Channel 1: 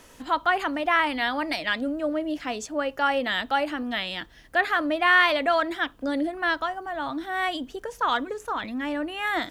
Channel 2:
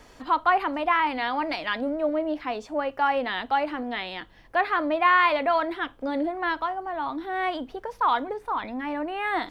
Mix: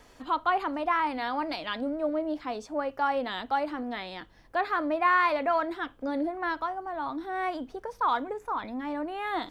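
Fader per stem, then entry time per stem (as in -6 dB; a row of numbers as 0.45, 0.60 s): -15.5, -4.5 dB; 0.00, 0.00 s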